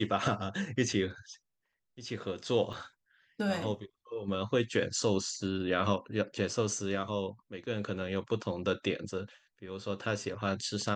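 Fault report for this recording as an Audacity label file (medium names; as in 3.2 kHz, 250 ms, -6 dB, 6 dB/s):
2.730000	2.730000	dropout 3.3 ms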